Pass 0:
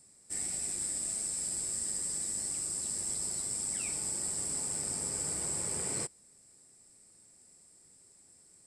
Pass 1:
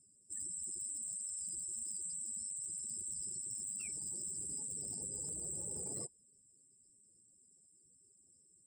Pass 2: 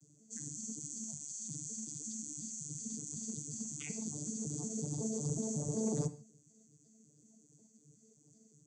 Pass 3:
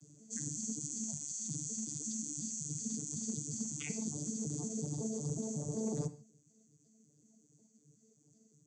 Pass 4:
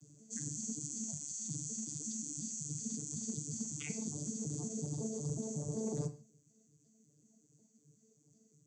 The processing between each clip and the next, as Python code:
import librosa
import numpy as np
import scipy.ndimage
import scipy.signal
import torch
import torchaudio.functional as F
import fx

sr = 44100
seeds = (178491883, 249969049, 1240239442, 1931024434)

y1 = fx.spec_gate(x, sr, threshold_db=-15, keep='strong')
y1 = np.clip(10.0 ** (28.0 / 20.0) * y1, -1.0, 1.0) / 10.0 ** (28.0 / 20.0)
y1 = y1 * librosa.db_to_amplitude(-6.5)
y2 = fx.vocoder_arp(y1, sr, chord='bare fifth', root=50, every_ms=185)
y2 = fx.rev_gated(y2, sr, seeds[0], gate_ms=180, shape='falling', drr_db=10.5)
y2 = y2 * librosa.db_to_amplitude(6.0)
y3 = scipy.signal.sosfilt(scipy.signal.butter(2, 7800.0, 'lowpass', fs=sr, output='sos'), y2)
y3 = fx.rider(y3, sr, range_db=4, speed_s=0.5)
y3 = y3 * librosa.db_to_amplitude(2.0)
y4 = fx.low_shelf(y3, sr, hz=75.0, db=6.5)
y4 = fx.doubler(y4, sr, ms=39.0, db=-13)
y4 = y4 * librosa.db_to_amplitude(-1.5)